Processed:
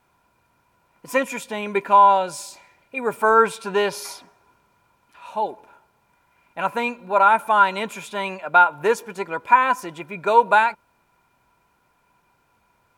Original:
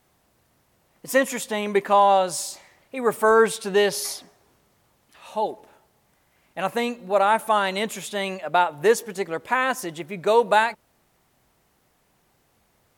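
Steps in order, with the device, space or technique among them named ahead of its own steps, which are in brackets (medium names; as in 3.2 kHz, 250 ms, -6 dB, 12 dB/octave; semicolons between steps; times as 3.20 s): inside a helmet (treble shelf 4.6 kHz -5 dB; small resonant body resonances 990/1400/2400 Hz, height 17 dB, ringing for 50 ms); 1.18–3.21 s: peaking EQ 1.1 kHz -6 dB 0.87 oct; trim -2 dB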